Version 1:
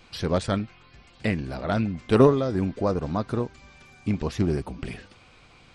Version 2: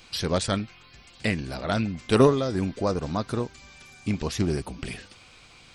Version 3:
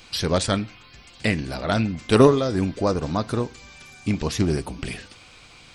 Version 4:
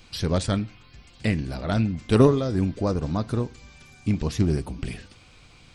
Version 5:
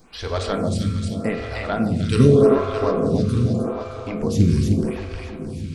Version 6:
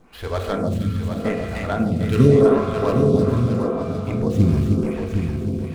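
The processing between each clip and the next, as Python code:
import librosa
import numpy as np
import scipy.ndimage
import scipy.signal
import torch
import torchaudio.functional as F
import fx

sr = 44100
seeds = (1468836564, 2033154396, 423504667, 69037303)

y1 = fx.high_shelf(x, sr, hz=2900.0, db=11.5)
y1 = y1 * librosa.db_to_amplitude(-1.5)
y2 = fx.rev_fdn(y1, sr, rt60_s=0.52, lf_ratio=1.0, hf_ratio=0.65, size_ms=20.0, drr_db=18.0)
y2 = y2 * librosa.db_to_amplitude(3.5)
y3 = fx.low_shelf(y2, sr, hz=280.0, db=9.5)
y3 = y3 * librosa.db_to_amplitude(-6.5)
y4 = fx.echo_feedback(y3, sr, ms=309, feedback_pct=60, wet_db=-5)
y4 = fx.rev_fdn(y4, sr, rt60_s=3.2, lf_ratio=1.25, hf_ratio=0.35, size_ms=13.0, drr_db=2.0)
y4 = fx.stagger_phaser(y4, sr, hz=0.83)
y4 = y4 * librosa.db_to_amplitude(4.0)
y5 = scipy.ndimage.median_filter(y4, 9, mode='constant')
y5 = y5 + 10.0 ** (-7.0 / 20.0) * np.pad(y5, (int(759 * sr / 1000.0), 0))[:len(y5)]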